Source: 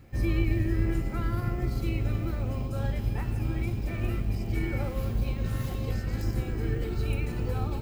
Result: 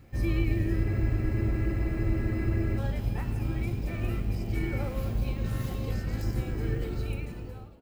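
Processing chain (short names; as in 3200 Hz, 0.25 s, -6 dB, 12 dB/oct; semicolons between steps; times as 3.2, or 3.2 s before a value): ending faded out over 1.03 s; frequency-shifting echo 0.109 s, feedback 64%, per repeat +76 Hz, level -18.5 dB; spectral freeze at 0.87, 1.90 s; gain -1 dB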